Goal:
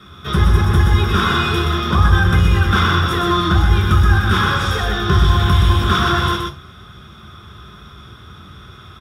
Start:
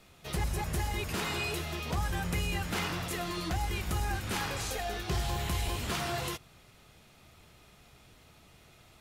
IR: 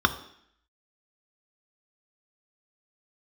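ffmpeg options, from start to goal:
-filter_complex "[0:a]aecho=1:1:124:0.596[a];[1:a]atrim=start_sample=2205,atrim=end_sample=3969[b];[a][b]afir=irnorm=-1:irlink=0,asplit=2[c][d];[d]asoftclip=type=tanh:threshold=-12dB,volume=-8.5dB[e];[c][e]amix=inputs=2:normalize=0,volume=-1dB"

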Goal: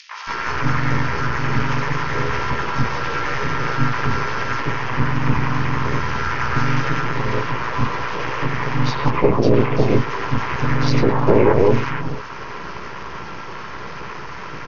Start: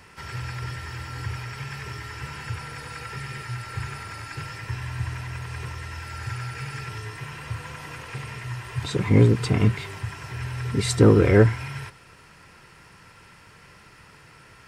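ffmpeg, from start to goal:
-filter_complex "[0:a]acrossover=split=140[a][b];[a]acrusher=bits=6:mode=log:mix=0:aa=0.000001[c];[c][b]amix=inputs=2:normalize=0,acompressor=threshold=-26dB:ratio=5,asplit=2[d][e];[e]adelay=17,volume=-6dB[f];[d][f]amix=inputs=2:normalize=0,adynamicequalizer=threshold=0.00224:dfrequency=430:dqfactor=7.9:tfrequency=430:tqfactor=7.9:attack=5:release=100:ratio=0.375:range=2:mode=boostabove:tftype=bell,bandreject=f=50:t=h:w=6,bandreject=f=100:t=h:w=6,bandreject=f=150:t=h:w=6,bandreject=f=200:t=h:w=6,bandreject=f=250:t=h:w=6,bandreject=f=300:t=h:w=6,bandreject=f=350:t=h:w=6,bandreject=f=400:t=h:w=6,bandreject=f=450:t=h:w=6,acompressor=mode=upward:threshold=-37dB:ratio=2.5,aresample=11025,aeval=exprs='max(val(0),0)':c=same,aresample=44100,acrossover=split=790|2900[g][h][i];[h]adelay=110[j];[g]adelay=290[k];[k][j][i]amix=inputs=3:normalize=0,asplit=2[l][m];[m]asetrate=52444,aresample=44100,atempo=0.840896,volume=-3dB[n];[l][n]amix=inputs=2:normalize=0,equalizer=f=100:t=o:w=0.67:g=-4,equalizer=f=400:t=o:w=0.67:g=6,equalizer=f=1k:t=o:w=0.67:g=10,equalizer=f=4k:t=o:w=0.67:g=-6,alimiter=level_in=15dB:limit=-1dB:release=50:level=0:latency=1,volume=-1dB"

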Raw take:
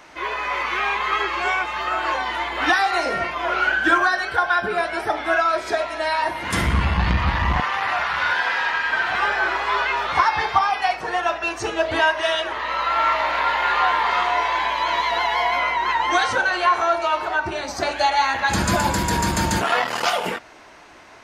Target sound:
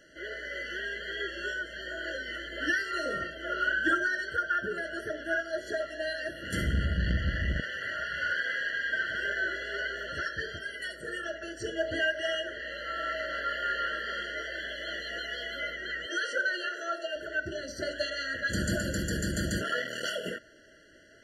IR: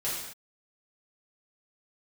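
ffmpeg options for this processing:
-filter_complex "[0:a]asettb=1/sr,asplit=3[a][b][c];[a]atrim=end=10.574[d];[b]atrim=start=10.57:end=11.24,asetpts=PTS-STARTPTS,afade=t=in:d=0.004:c=qsin,afade=t=out:st=0.666:d=0.004:c=qsin,highshelf=f=7.1k:t=q:w=3:g=6.5[e];[c]atrim=start=11.236[f];[d][e]acrossfade=d=0.004:c1=hsin:c2=qsin[g];[g][f]acrossfade=d=0.004:c1=qsin:c2=hsin,asettb=1/sr,asplit=3[h][i][j];[h]atrim=end=16.064[k];[i]atrim=start=16.06:end=17.16,asetpts=PTS-STARTPTS,afade=t=in:d=0.004:c=qsin,afade=t=out:st=1.096:d=0.004:c=qsin,highpass=f=340:w=0.5412,highpass=f=340:w=1.3066[l];[j]atrim=start=17.156[m];[k][l]acrossfade=d=0.004:c1=hsin:c2=qsin[n];[n][m]acrossfade=d=0.004:c1=qsin:c2=hsin,afftfilt=real='re*eq(mod(floor(b*sr/1024/680),2),0)':imag='im*eq(mod(floor(b*sr/1024/680),2),0)':win_size=1024:overlap=0.75,volume=-8dB"

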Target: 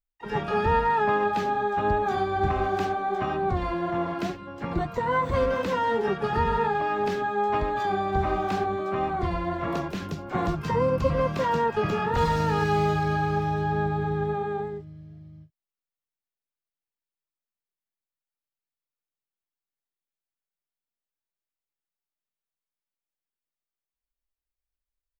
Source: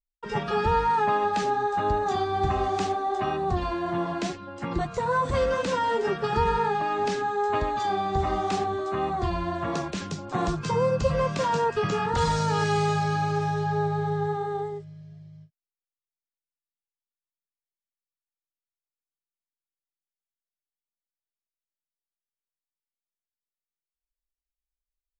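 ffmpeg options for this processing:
-filter_complex "[0:a]asplit=3[a][b][c];[b]asetrate=22050,aresample=44100,atempo=2,volume=-12dB[d];[c]asetrate=88200,aresample=44100,atempo=0.5,volume=-13dB[e];[a][d][e]amix=inputs=3:normalize=0,equalizer=f=7.8k:t=o:w=1.7:g=-10"

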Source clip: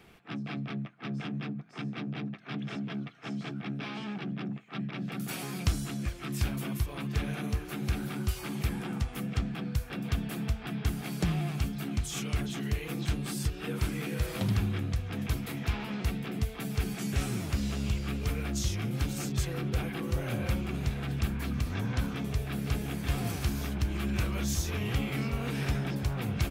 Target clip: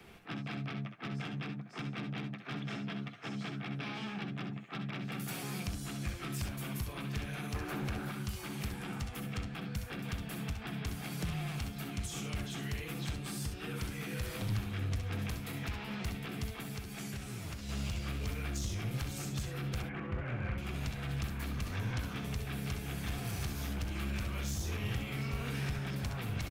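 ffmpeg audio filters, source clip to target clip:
-filter_complex "[0:a]asplit=3[a][b][c];[a]afade=t=out:st=7.54:d=0.02[d];[b]equalizer=f=630:w=0.33:g=14.5,afade=t=in:st=7.54:d=0.02,afade=t=out:st=8.1:d=0.02[e];[c]afade=t=in:st=8.1:d=0.02[f];[d][e][f]amix=inputs=3:normalize=0,asettb=1/sr,asplit=3[g][h][i];[g]atrim=end=19.824[j];[h]atrim=start=19.82:end=20.58,asetpts=PTS-STARTPTS,afade=t=in:d=0.004:c=qsin,afade=t=out:st=0.756:d=0.004:c=qsin,lowpass=f=2.3k:w=0.5412,lowpass=f=2.3k:w=1.3066[k];[i]atrim=start=20.576[l];[j][k]acrossfade=d=0.004:c1=hsin:c2=qsin[m];[m][l]acrossfade=d=0.004:c1=qsin:c2=hsin,acrossover=split=130|430|1000[n][o][p][q];[n]acompressor=threshold=-35dB:ratio=4[r];[o]acompressor=threshold=-46dB:ratio=4[s];[p]acompressor=threshold=-52dB:ratio=4[t];[q]acompressor=threshold=-43dB:ratio=4[u];[r][s][t][u]amix=inputs=4:normalize=0,alimiter=level_in=3dB:limit=-24dB:level=0:latency=1:release=361,volume=-3dB,asettb=1/sr,asplit=3[v][w][x];[v]atrim=end=16.474[y];[w]atrim=start=16.47:end=17.69,asetpts=PTS-STARTPTS,afade=t=in:d=0.004:c=qsin,afade=t=out:st=1.216:d=0.004:c=qsin,acompressor=threshold=-40dB:ratio=6[z];[x]atrim=start=17.686[aa];[y][z]acrossfade=d=0.004:c1=hsin:c2=qsin[ab];[ab][aa]acrossfade=d=0.004:c1=qsin:c2=hsin,aeval=exprs='clip(val(0),-1,0.0178)':c=same,aecho=1:1:64|74:0.355|0.266,volume=1dB"

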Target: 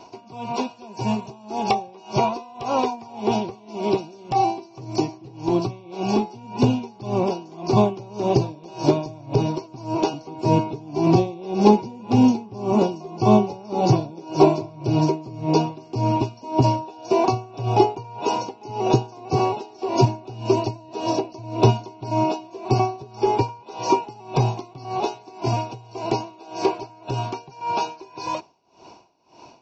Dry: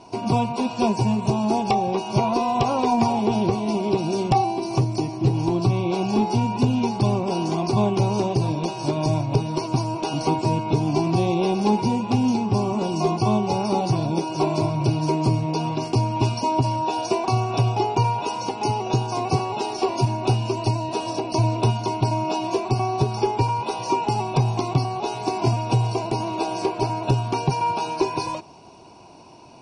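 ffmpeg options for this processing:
-filter_complex "[0:a]bass=f=250:g=-7,treble=f=4k:g=0,acrossover=split=650[a][b];[a]dynaudnorm=f=870:g=17:m=8dB[c];[c][b]amix=inputs=2:normalize=0,aresample=16000,aresample=44100,aeval=exprs='val(0)*pow(10,-24*(0.5-0.5*cos(2*PI*1.8*n/s))/20)':c=same,volume=3.5dB"

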